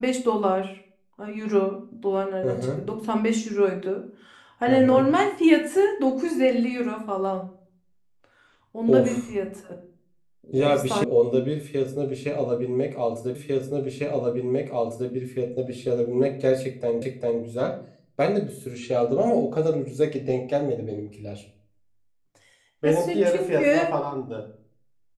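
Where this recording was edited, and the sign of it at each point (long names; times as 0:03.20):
0:11.04: cut off before it has died away
0:13.35: the same again, the last 1.75 s
0:17.02: the same again, the last 0.4 s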